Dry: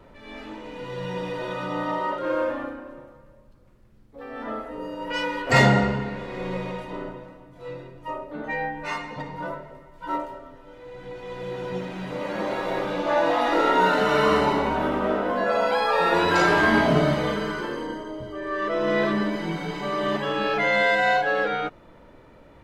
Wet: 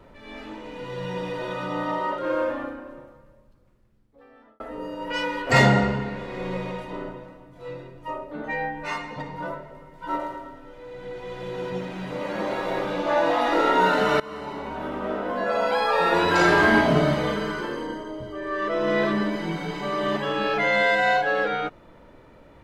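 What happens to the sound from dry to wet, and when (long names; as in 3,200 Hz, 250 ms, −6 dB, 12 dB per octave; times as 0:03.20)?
0:02.97–0:04.60: fade out
0:09.66–0:11.70: repeating echo 110 ms, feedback 45%, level −6 dB
0:14.20–0:15.82: fade in, from −22 dB
0:16.35–0:16.81: flutter between parallel walls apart 7.8 metres, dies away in 0.36 s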